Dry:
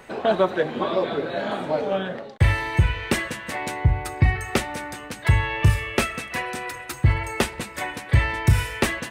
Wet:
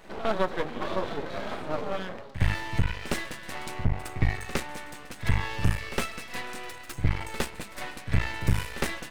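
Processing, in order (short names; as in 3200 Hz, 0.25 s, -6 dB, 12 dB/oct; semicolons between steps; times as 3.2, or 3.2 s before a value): half-wave rectifier; reverse echo 60 ms -13 dB; gain -3.5 dB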